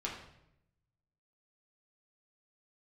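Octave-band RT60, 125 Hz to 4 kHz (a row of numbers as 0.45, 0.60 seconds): 1.5, 1.0, 0.85, 0.75, 0.70, 0.65 seconds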